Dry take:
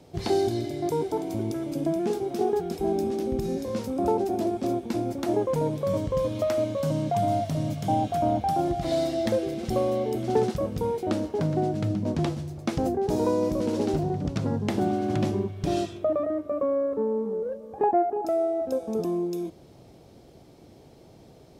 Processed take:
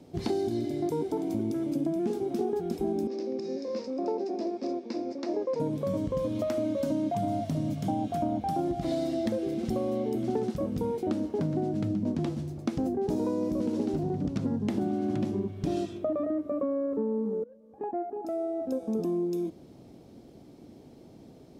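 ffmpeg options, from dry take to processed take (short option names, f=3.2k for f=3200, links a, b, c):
-filter_complex "[0:a]asettb=1/sr,asplit=3[a][b][c];[a]atrim=end=3.074[d];[b]atrim=start=3.07:end=5.6,asetpts=PTS-STARTPTS,afade=t=in:d=0.004:c=qsin,afade=t=out:st=2.526:d=0.004:c=qsin,highpass=450,equalizer=f=510:t=q:w=4:g=4,equalizer=f=800:t=q:w=4:g=-6,equalizer=f=1.4k:t=q:w=4:g=-7,equalizer=f=3.2k:t=q:w=4:g=-9,equalizer=f=5.1k:t=q:w=4:g=8,lowpass=f=5.6k:w=0.5412,lowpass=f=5.6k:w=1.3066[e];[c]atrim=start=5.596[f];[d][e]acrossfade=d=0.004:c1=hsin:c2=qsin[g];[g][f]acrossfade=d=0.004:c1=qsin:c2=hsin,asettb=1/sr,asplit=3[h][i][j];[h]atrim=end=6.644[k];[i]atrim=start=6.64:end=7.15,asetpts=PTS-STARTPTS,afade=t=in:d=0.004:c=qsin,afade=t=out:st=0.506:d=0.004:c=qsin,aecho=1:1:3.2:0.71,atrim=end_sample=22491[l];[j]atrim=start=7.146[m];[k][l]acrossfade=d=0.004:c1=hsin:c2=qsin[n];[n][m]acrossfade=d=0.004:c1=qsin:c2=hsin,asplit=2[o][p];[o]atrim=end=17.44,asetpts=PTS-STARTPTS,afade=t=out:st=17.436:d=0.004:c=hsin:silence=0.0841395[q];[p]atrim=start=17.44,asetpts=PTS-STARTPTS,afade=t=in:d=1.62:silence=0.0841395[r];[q][r]concat=n=2:v=0:a=1,equalizer=f=250:w=1.3:g=10,acompressor=threshold=-21dB:ratio=6,volume=-4.5dB"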